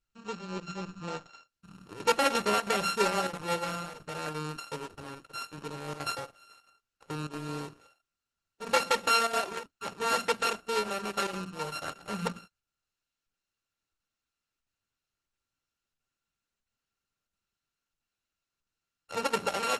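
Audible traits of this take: a buzz of ramps at a fixed pitch in blocks of 32 samples; chopped level 1.5 Hz, depth 65%, duty 90%; Opus

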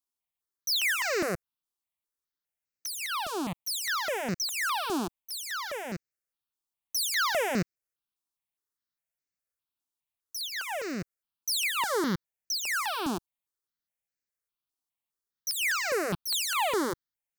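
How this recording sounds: notches that jump at a steady rate 4.9 Hz 540–3300 Hz

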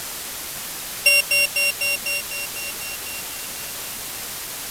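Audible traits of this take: a buzz of ramps at a fixed pitch in blocks of 16 samples; tremolo saw up 0.92 Hz, depth 35%; a quantiser's noise floor 6-bit, dither triangular; AAC

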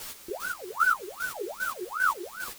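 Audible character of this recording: phasing stages 6, 0.88 Hz, lowest notch 640–1300 Hz; a quantiser's noise floor 8-bit, dither triangular; chopped level 2.5 Hz, depth 65%, duty 30%; a shimmering, thickened sound

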